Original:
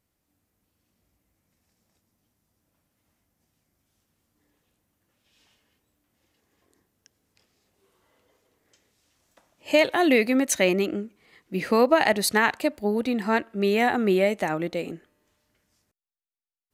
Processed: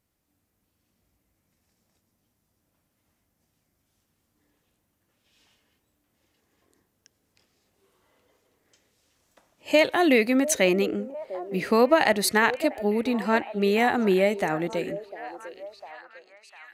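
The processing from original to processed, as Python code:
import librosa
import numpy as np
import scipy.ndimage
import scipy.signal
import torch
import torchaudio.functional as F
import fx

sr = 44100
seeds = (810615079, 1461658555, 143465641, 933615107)

y = fx.echo_stepped(x, sr, ms=701, hz=500.0, octaves=0.7, feedback_pct=70, wet_db=-11.5)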